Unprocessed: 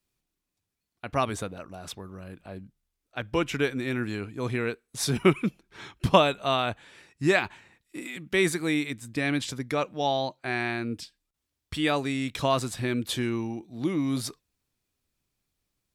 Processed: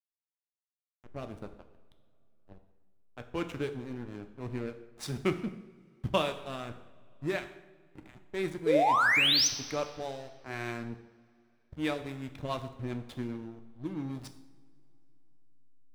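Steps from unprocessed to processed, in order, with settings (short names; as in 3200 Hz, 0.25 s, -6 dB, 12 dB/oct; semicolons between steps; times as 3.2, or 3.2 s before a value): rotary speaker horn 1.1 Hz, later 7.5 Hz, at 11.41; painted sound rise, 8.66–9.48, 420–6400 Hz -18 dBFS; backlash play -27.5 dBFS; two-slope reverb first 0.89 s, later 3.4 s, from -19 dB, DRR 7 dB; mismatched tape noise reduction decoder only; gain -6.5 dB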